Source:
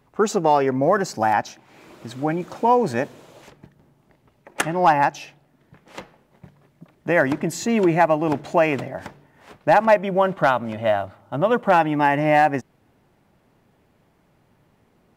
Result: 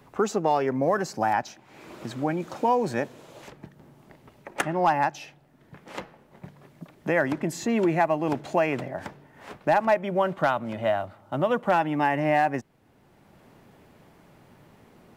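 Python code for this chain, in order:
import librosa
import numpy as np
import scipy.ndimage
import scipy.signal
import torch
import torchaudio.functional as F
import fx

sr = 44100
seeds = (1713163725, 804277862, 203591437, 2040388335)

y = fx.band_squash(x, sr, depth_pct=40)
y = F.gain(torch.from_numpy(y), -5.0).numpy()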